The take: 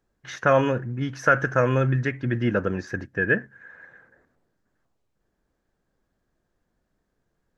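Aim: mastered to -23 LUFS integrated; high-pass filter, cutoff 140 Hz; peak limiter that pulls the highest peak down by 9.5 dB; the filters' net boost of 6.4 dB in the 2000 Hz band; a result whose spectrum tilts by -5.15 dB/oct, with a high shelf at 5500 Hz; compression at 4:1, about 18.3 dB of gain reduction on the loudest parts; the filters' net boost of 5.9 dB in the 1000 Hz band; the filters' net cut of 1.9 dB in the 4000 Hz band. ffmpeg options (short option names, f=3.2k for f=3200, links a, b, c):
-af "highpass=140,equalizer=f=1k:t=o:g=5.5,equalizer=f=2k:t=o:g=8,equalizer=f=4k:t=o:g=-5.5,highshelf=f=5.5k:g=-7.5,acompressor=threshold=-31dB:ratio=4,volume=12.5dB,alimiter=limit=-10dB:level=0:latency=1"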